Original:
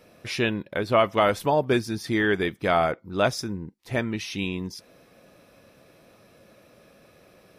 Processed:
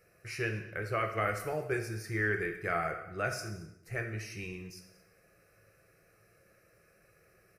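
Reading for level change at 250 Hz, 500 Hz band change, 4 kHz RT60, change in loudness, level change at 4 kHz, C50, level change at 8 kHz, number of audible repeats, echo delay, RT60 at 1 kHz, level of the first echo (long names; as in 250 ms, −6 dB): −14.0 dB, −12.0 dB, 0.75 s, −10.0 dB, −16.0 dB, 8.0 dB, −7.0 dB, 1, 223 ms, 0.80 s, −21.5 dB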